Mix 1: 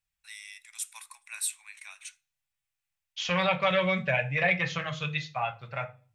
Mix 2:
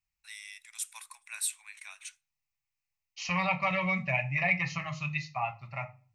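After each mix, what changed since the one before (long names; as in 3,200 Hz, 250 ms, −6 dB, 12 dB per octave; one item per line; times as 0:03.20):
first voice: send −6.5 dB
second voice: add phaser with its sweep stopped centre 2,300 Hz, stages 8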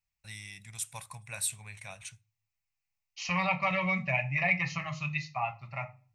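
first voice: remove high-pass filter 1,100 Hz 24 dB per octave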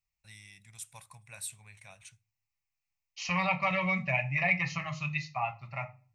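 first voice −7.5 dB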